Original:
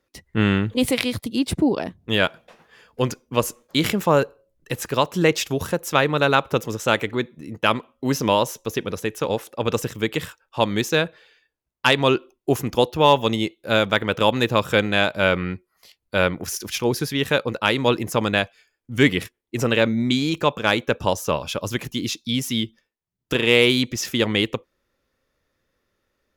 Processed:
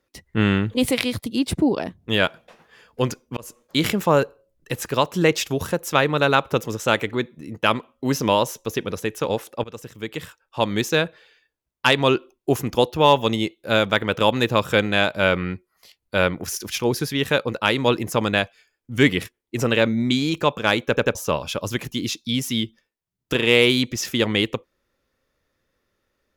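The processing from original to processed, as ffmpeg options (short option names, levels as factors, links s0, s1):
-filter_complex "[0:a]asplit=6[s0][s1][s2][s3][s4][s5];[s0]atrim=end=3.37,asetpts=PTS-STARTPTS,afade=t=out:st=3.366:d=0.004:c=hsin[s6];[s1]atrim=start=3.37:end=9.64,asetpts=PTS-STARTPTS,afade=t=in:d=0.5:c=qsin,afade=t=out:st=6.266:d=0.004:c=hsin:silence=0.112202[s7];[s2]atrim=start=9.64:end=20.972,asetpts=PTS-STARTPTS,afade=t=in:d=1.17:silence=0.112202[s8];[s3]atrim=start=20.878:end=20.972[s9];[s4]atrim=start=20.878:end=20.972[s10];[s5]atrim=start=21.148[s11];[s6][s7][s8]concat=n=3:v=0:a=1[s12];[s12][s9]acrossfade=d=0.004:c1=hsin:c2=hsin[s13];[s13][s10]acrossfade=d=0.004:c1=hsin:c2=hsin[s14];[s14][s11]acrossfade=d=0.004:c1=hsin:c2=hsin"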